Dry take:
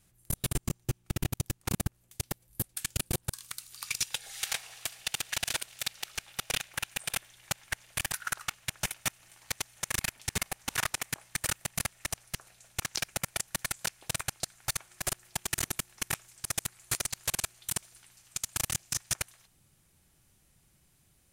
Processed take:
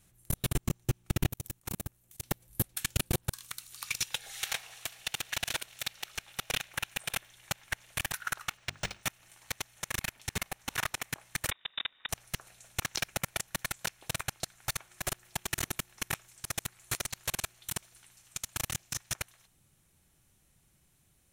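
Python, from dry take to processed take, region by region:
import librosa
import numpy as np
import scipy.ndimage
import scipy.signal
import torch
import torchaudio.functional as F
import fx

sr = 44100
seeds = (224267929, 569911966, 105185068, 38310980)

y = fx.chain(x, sr, fx.high_shelf(hz=10000.0, db=9.5),
    fx.level_steps(step_db=20),
    fx.transient(attack_db=-1, sustain_db=7), at=(1.29, 2.23))
y = fx.chain(y, sr, fx.hum_notches(base_hz=50, count=8),
    fx.resample_linear(factor=3), at=(8.57, 9.03))
y = fx.chain(y, sr, fx.air_absorb(metres=460.0),
    fx.freq_invert(carrier_hz=3700), at=(11.51, 12.09))
y = fx.notch(y, sr, hz=4800.0, q=12.0)
y = fx.dynamic_eq(y, sr, hz=8700.0, q=1.0, threshold_db=-46.0, ratio=4.0, max_db=-5)
y = fx.rider(y, sr, range_db=10, speed_s=2.0)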